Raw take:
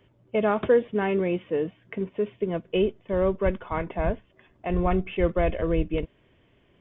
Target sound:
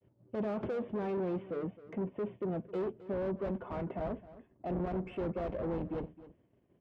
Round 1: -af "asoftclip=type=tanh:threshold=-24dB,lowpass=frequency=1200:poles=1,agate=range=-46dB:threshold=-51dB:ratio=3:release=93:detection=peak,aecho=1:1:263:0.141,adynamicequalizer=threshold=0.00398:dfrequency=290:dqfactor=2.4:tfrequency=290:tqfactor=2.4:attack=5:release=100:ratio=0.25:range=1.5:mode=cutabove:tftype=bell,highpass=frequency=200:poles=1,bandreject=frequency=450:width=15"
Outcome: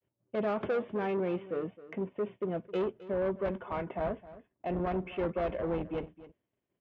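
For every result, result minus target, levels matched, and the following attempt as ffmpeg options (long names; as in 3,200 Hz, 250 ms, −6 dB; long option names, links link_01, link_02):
soft clipping: distortion −5 dB; 1,000 Hz band +2.0 dB
-af "asoftclip=type=tanh:threshold=-33dB,lowpass=frequency=1200:poles=1,agate=range=-46dB:threshold=-51dB:ratio=3:release=93:detection=peak,aecho=1:1:263:0.141,adynamicequalizer=threshold=0.00398:dfrequency=290:dqfactor=2.4:tfrequency=290:tqfactor=2.4:attack=5:release=100:ratio=0.25:range=1.5:mode=cutabove:tftype=bell,highpass=frequency=200:poles=1,bandreject=frequency=450:width=15"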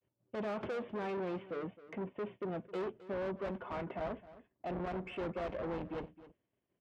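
1,000 Hz band +3.5 dB
-af "asoftclip=type=tanh:threshold=-33dB,lowpass=frequency=1200:poles=1,tiltshelf=frequency=810:gain=6.5,agate=range=-46dB:threshold=-51dB:ratio=3:release=93:detection=peak,aecho=1:1:263:0.141,adynamicequalizer=threshold=0.00398:dfrequency=290:dqfactor=2.4:tfrequency=290:tqfactor=2.4:attack=5:release=100:ratio=0.25:range=1.5:mode=cutabove:tftype=bell,highpass=frequency=200:poles=1,bandreject=frequency=450:width=15"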